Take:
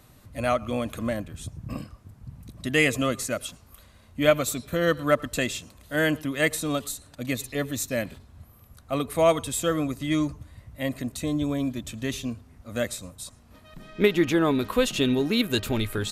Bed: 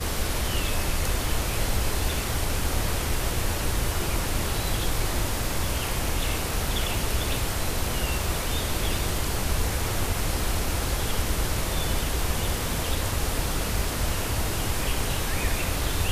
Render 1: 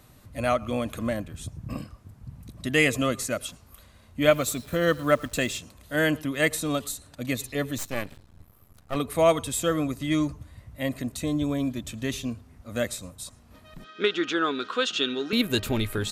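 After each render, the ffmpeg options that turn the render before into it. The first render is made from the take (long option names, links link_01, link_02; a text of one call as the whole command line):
ffmpeg -i in.wav -filter_complex "[0:a]asettb=1/sr,asplit=3[link_01][link_02][link_03];[link_01]atrim=end=4.324[link_04];[link_02]atrim=start=4.32:end=5.58,asetpts=PTS-STARTPTS,afade=type=in:duration=0.004:curve=qsin,afade=type=out:start_time=1.256:duration=0.004:curve=qsin,acrusher=bits=9:dc=4:mix=0:aa=0.000001[link_05];[link_03]atrim=start=5.576[link_06];[link_04][link_05]acrossfade=duration=0.004:curve1=hsin:curve2=qsin[link_07];[link_07][link_06]acrossfade=duration=0.004:curve1=qsin:curve2=hsin,asettb=1/sr,asplit=3[link_08][link_09][link_10];[link_08]atrim=end=7.784[link_11];[link_09]atrim=start=7.78:end=8.96,asetpts=PTS-STARTPTS,afade=type=in:duration=0.004:curve=qsin,afade=type=out:start_time=1.176:duration=0.004:curve=qsin,aeval=exprs='max(val(0),0)':channel_layout=same[link_12];[link_10]atrim=start=8.956[link_13];[link_11][link_12]acrossfade=duration=0.004:curve1=hsin:curve2=qsin[link_14];[link_14][link_13]acrossfade=duration=0.004:curve1=qsin:curve2=hsin,asettb=1/sr,asplit=3[link_15][link_16][link_17];[link_15]atrim=end=13.844[link_18];[link_16]atrim=start=13.84:end=15.33,asetpts=PTS-STARTPTS,afade=type=in:duration=0.004:curve=qsin,afade=type=out:start_time=1.486:duration=0.004:curve=qsin,highpass=410,equalizer=frequency=600:width_type=q:width=4:gain=-9,equalizer=frequency=890:width_type=q:width=4:gain=-9,equalizer=frequency=1400:width_type=q:width=4:gain=10,equalizer=frequency=2100:width_type=q:width=4:gain=-6,equalizer=frequency=3400:width_type=q:width=4:gain=5,lowpass=frequency=6500:width=0.5412,lowpass=frequency=6500:width=1.3066[link_19];[link_17]atrim=start=15.326[link_20];[link_18][link_19]acrossfade=duration=0.004:curve1=hsin:curve2=qsin[link_21];[link_21][link_20]acrossfade=duration=0.004:curve1=qsin:curve2=hsin" out.wav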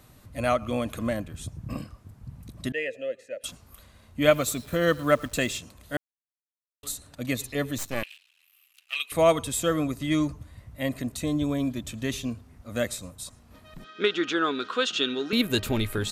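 ffmpeg -i in.wav -filter_complex "[0:a]asettb=1/sr,asplit=3[link_01][link_02][link_03];[link_01]atrim=end=2.724[link_04];[link_02]atrim=start=2.72:end=3.44,asetpts=PTS-STARTPTS,afade=type=in:duration=0.004:curve=qsin,afade=type=out:start_time=0.716:duration=0.004:curve=qsin,asplit=3[link_05][link_06][link_07];[link_05]bandpass=frequency=530:width_type=q:width=8,volume=0dB[link_08];[link_06]bandpass=frequency=1840:width_type=q:width=8,volume=-6dB[link_09];[link_07]bandpass=frequency=2480:width_type=q:width=8,volume=-9dB[link_10];[link_08][link_09][link_10]amix=inputs=3:normalize=0[link_11];[link_03]atrim=start=3.436[link_12];[link_04][link_11]acrossfade=duration=0.004:curve1=hsin:curve2=qsin[link_13];[link_13][link_12]acrossfade=duration=0.004:curve1=qsin:curve2=hsin,asettb=1/sr,asplit=3[link_14][link_15][link_16];[link_14]atrim=end=8.034[link_17];[link_15]atrim=start=8.03:end=9.12,asetpts=PTS-STARTPTS,afade=type=in:duration=0.004:curve=qsin,afade=type=out:start_time=1.086:duration=0.004:curve=qsin,highpass=frequency=2700:width_type=q:width=7.2[link_18];[link_16]atrim=start=9.116[link_19];[link_17][link_18]acrossfade=duration=0.004:curve1=hsin:curve2=qsin[link_20];[link_20][link_19]acrossfade=duration=0.004:curve1=qsin:curve2=hsin,asplit=3[link_21][link_22][link_23];[link_21]atrim=end=5.97,asetpts=PTS-STARTPTS,afade=type=out:start_time=5.966:duration=0.004:curve=hsin[link_24];[link_22]atrim=start=5.97:end=6.83,asetpts=PTS-STARTPTS,volume=0[link_25];[link_23]atrim=start=6.83,asetpts=PTS-STARTPTS,afade=type=in:duration=0.004:curve=hsin[link_26];[link_24][link_25][link_26]concat=n=3:v=0:a=1" out.wav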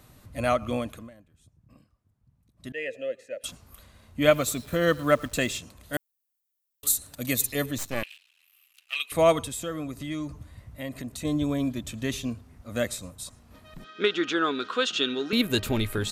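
ffmpeg -i in.wav -filter_complex "[0:a]asettb=1/sr,asplit=3[link_01][link_02][link_03];[link_01]atrim=end=5.934[link_04];[link_02]atrim=start=5.93:end=7.66,asetpts=PTS-STARTPTS,afade=type=in:duration=0.004:curve=qsin,afade=type=out:start_time=1.726:duration=0.004:curve=qsin,aemphasis=mode=production:type=50fm[link_05];[link_03]atrim=start=7.656[link_06];[link_04][link_05]acrossfade=duration=0.004:curve1=hsin:curve2=qsin[link_07];[link_07][link_06]acrossfade=duration=0.004:curve1=qsin:curve2=hsin,asettb=1/sr,asplit=3[link_08][link_09][link_10];[link_08]atrim=end=9.454[link_11];[link_09]atrim=start=9.45:end=11.25,asetpts=PTS-STARTPTS,afade=type=in:duration=0.004:curve=qsin,afade=type=out:start_time=1.796:duration=0.004:curve=qsin,acompressor=threshold=-35dB:ratio=2:attack=3.2:release=140:knee=1:detection=peak[link_12];[link_10]atrim=start=11.246[link_13];[link_11][link_12]acrossfade=duration=0.004:curve1=hsin:curve2=qsin[link_14];[link_14][link_13]acrossfade=duration=0.004:curve1=qsin:curve2=hsin,asplit=3[link_15][link_16][link_17];[link_15]atrim=end=1.1,asetpts=PTS-STARTPTS,afade=type=out:start_time=0.73:duration=0.37:silence=0.0749894[link_18];[link_16]atrim=start=1.1:end=2.56,asetpts=PTS-STARTPTS,volume=-22.5dB[link_19];[link_17]atrim=start=2.56,asetpts=PTS-STARTPTS,afade=type=in:duration=0.37:silence=0.0749894[link_20];[link_18][link_19][link_20]concat=n=3:v=0:a=1" out.wav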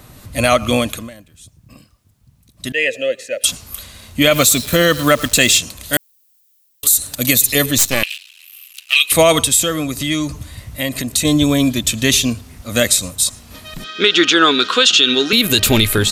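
ffmpeg -i in.wav -filter_complex "[0:a]acrossover=split=2500[link_01][link_02];[link_02]dynaudnorm=framelen=120:gausssize=5:maxgain=11dB[link_03];[link_01][link_03]amix=inputs=2:normalize=0,alimiter=level_in=12.5dB:limit=-1dB:release=50:level=0:latency=1" out.wav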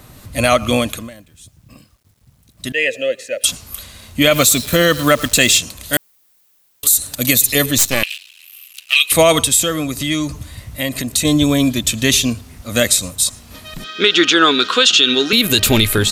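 ffmpeg -i in.wav -af "acrusher=bits=9:mix=0:aa=0.000001" out.wav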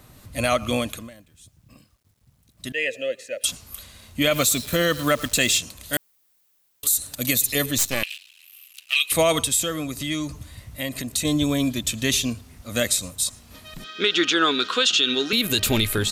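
ffmpeg -i in.wav -af "volume=-8dB" out.wav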